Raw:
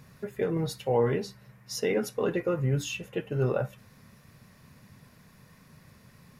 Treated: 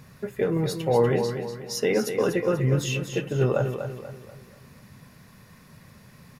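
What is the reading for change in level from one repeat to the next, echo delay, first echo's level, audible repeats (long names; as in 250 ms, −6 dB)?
−7.5 dB, 243 ms, −8.0 dB, 4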